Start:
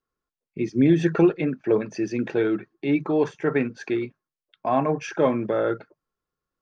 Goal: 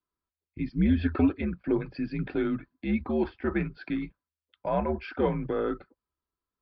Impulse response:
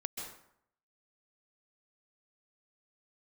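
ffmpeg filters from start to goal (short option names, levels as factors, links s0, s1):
-af "aresample=11025,aresample=44100,afreqshift=-80,volume=0.531"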